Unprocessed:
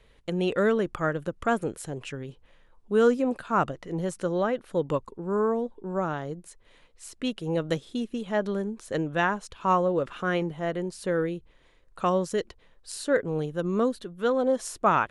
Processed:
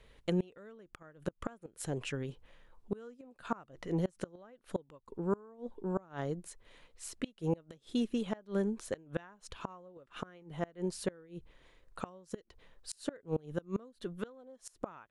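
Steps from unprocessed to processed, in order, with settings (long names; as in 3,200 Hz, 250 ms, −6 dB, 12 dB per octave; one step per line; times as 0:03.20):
gate with flip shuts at −20 dBFS, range −28 dB
level −1.5 dB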